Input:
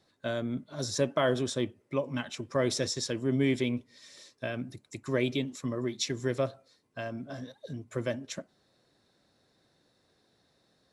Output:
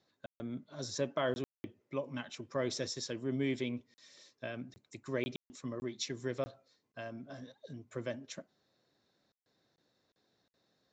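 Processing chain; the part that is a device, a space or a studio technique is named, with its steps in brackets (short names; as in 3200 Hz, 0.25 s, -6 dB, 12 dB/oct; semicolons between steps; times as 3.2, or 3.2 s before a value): call with lost packets (HPF 100 Hz 6 dB/oct; downsampling 16000 Hz; packet loss bursts); gain -6.5 dB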